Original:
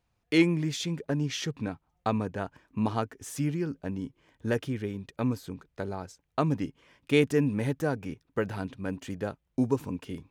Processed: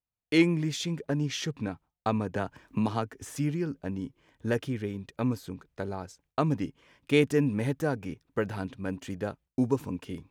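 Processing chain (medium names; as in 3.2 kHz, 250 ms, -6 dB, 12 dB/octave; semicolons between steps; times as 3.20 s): gate with hold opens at -58 dBFS; 2.34–3.36 s: three bands compressed up and down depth 70%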